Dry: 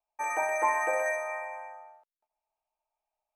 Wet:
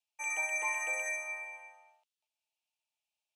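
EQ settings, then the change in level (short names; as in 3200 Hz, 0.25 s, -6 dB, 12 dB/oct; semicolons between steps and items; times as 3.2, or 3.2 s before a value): HPF 1500 Hz 6 dB/oct; LPF 9500 Hz 12 dB/oct; resonant high shelf 2100 Hz +9.5 dB, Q 3; -5.5 dB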